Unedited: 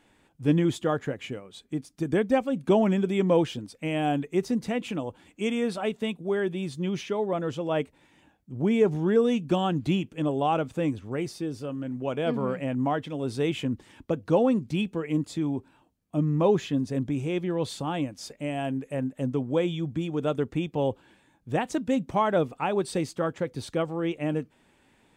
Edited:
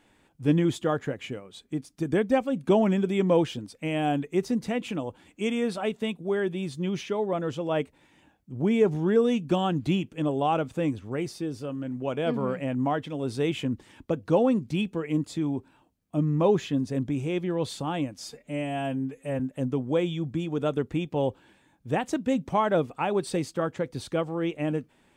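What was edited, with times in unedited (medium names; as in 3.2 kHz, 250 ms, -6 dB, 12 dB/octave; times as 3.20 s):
18.24–19.01 s: stretch 1.5×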